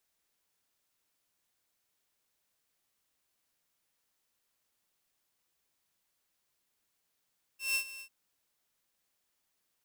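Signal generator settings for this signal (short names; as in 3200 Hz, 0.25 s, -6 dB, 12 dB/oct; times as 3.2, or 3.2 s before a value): ADSR saw 2690 Hz, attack 0.161 s, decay 87 ms, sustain -16.5 dB, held 0.42 s, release 77 ms -24.5 dBFS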